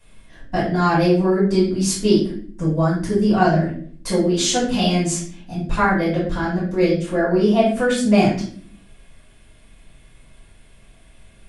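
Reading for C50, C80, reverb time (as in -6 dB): 3.5 dB, 9.5 dB, 0.50 s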